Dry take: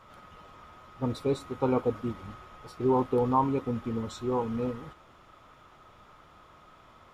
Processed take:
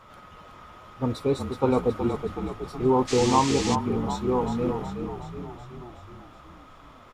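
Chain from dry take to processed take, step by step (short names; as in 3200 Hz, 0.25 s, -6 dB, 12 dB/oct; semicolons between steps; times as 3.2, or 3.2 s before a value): frequency-shifting echo 0.371 s, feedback 60%, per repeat -34 Hz, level -7 dB; 3.07–3.74 band noise 1700–7300 Hz -37 dBFS; gain +3.5 dB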